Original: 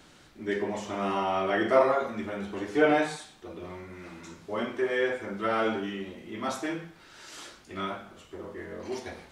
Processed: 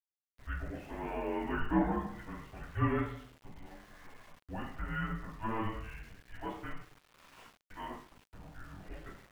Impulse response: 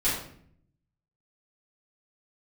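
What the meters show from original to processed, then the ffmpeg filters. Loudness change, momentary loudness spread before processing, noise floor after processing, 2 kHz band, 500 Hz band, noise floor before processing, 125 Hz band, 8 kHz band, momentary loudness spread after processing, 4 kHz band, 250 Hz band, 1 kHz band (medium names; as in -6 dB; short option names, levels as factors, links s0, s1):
-8.5 dB, 20 LU, under -85 dBFS, -10.5 dB, -14.5 dB, -55 dBFS, +3.5 dB, under -15 dB, 23 LU, -14.0 dB, -5.5 dB, -9.0 dB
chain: -filter_complex "[0:a]highpass=f=330:t=q:w=0.5412,highpass=f=330:t=q:w=1.307,lowpass=f=3100:t=q:w=0.5176,lowpass=f=3100:t=q:w=0.7071,lowpass=f=3100:t=q:w=1.932,afreqshift=-340,asplit=2[s0][s1];[1:a]atrim=start_sample=2205,asetrate=43218,aresample=44100[s2];[s1][s2]afir=irnorm=-1:irlink=0,volume=0.075[s3];[s0][s3]amix=inputs=2:normalize=0,aeval=exprs='val(0)*gte(abs(val(0)),0.00447)':c=same,volume=0.398"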